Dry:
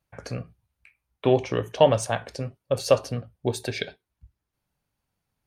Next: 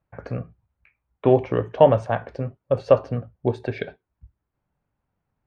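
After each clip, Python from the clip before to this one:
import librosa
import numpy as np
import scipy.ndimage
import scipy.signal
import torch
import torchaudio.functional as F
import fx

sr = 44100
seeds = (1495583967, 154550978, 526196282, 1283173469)

y = scipy.signal.sosfilt(scipy.signal.butter(2, 1600.0, 'lowpass', fs=sr, output='sos'), x)
y = F.gain(torch.from_numpy(y), 3.5).numpy()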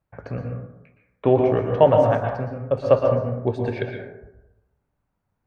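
y = fx.rev_plate(x, sr, seeds[0], rt60_s=0.92, hf_ratio=0.35, predelay_ms=105, drr_db=2.0)
y = F.gain(torch.from_numpy(y), -1.0).numpy()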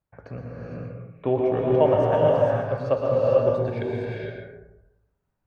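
y = fx.rev_gated(x, sr, seeds[1], gate_ms=490, shape='rising', drr_db=-2.5)
y = F.gain(torch.from_numpy(y), -6.5).numpy()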